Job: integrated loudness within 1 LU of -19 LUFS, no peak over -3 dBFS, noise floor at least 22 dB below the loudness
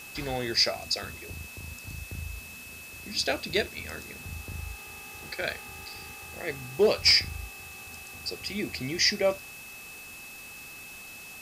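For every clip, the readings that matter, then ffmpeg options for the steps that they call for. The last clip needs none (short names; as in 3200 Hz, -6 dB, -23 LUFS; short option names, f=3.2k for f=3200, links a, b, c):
steady tone 2600 Hz; tone level -44 dBFS; noise floor -45 dBFS; noise floor target -51 dBFS; loudness -28.5 LUFS; peak -12.0 dBFS; loudness target -19.0 LUFS
-> -af "bandreject=f=2.6k:w=30"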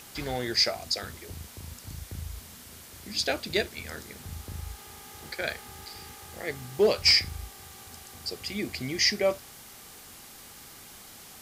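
steady tone none; noise floor -48 dBFS; noise floor target -50 dBFS
-> -af "afftdn=nr=6:nf=-48"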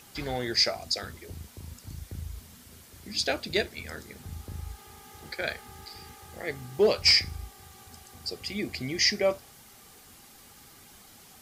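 noise floor -53 dBFS; loudness -27.0 LUFS; peak -12.0 dBFS; loudness target -19.0 LUFS
-> -af "volume=8dB"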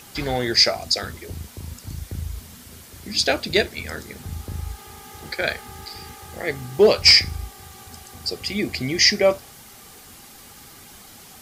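loudness -19.0 LUFS; peak -4.0 dBFS; noise floor -45 dBFS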